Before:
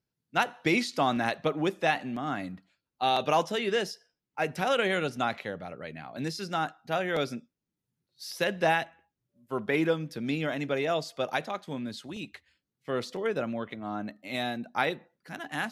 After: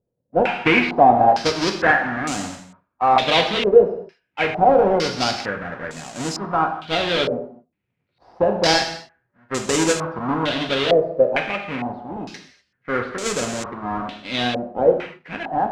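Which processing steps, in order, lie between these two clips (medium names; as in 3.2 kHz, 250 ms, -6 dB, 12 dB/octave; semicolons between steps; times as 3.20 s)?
square wave that keeps the level; gated-style reverb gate 270 ms falling, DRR 3 dB; step-sequenced low-pass 2.2 Hz 540–7300 Hz; trim +1 dB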